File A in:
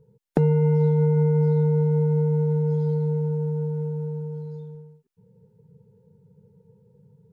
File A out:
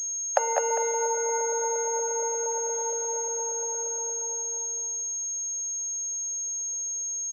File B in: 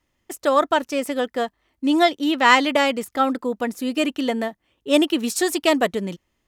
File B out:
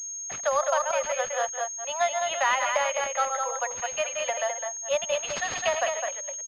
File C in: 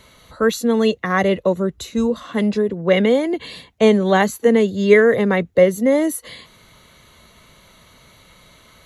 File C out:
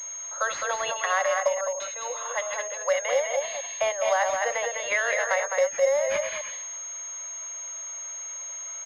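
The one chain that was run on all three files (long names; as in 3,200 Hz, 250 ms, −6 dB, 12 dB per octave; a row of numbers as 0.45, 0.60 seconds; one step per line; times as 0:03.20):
delay that plays each chunk backwards 117 ms, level −8.5 dB
Butterworth high-pass 530 Hz 96 dB per octave
downward compressor 3 to 1, threshold −23 dBFS
single-tap delay 208 ms −5 dB
switching amplifier with a slow clock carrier 6,500 Hz
loudness normalisation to −27 LKFS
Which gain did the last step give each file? +9.5, −0.5, 0.0 decibels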